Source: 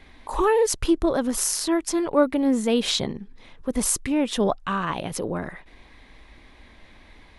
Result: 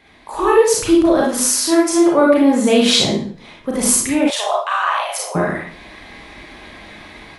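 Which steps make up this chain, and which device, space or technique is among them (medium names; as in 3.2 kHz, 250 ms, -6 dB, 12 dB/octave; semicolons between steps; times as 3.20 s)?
far laptop microphone (reverberation RT60 0.45 s, pre-delay 31 ms, DRR -3.5 dB; high-pass 190 Hz 6 dB/octave; level rider gain up to 10.5 dB); 4.30–5.35 s: steep high-pass 630 Hz 36 dB/octave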